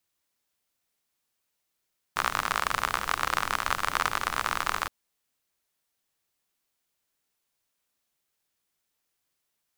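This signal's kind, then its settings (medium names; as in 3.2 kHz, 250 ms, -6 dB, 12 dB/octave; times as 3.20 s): rain from filtered ticks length 2.72 s, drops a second 51, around 1.2 kHz, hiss -11.5 dB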